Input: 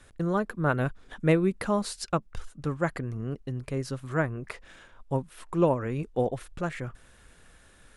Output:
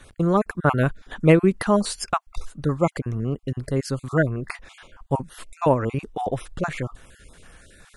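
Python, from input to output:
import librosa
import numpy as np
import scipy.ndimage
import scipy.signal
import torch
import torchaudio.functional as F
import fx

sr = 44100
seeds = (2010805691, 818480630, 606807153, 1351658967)

y = fx.spec_dropout(x, sr, seeds[0], share_pct=22)
y = y * 10.0 ** (7.5 / 20.0)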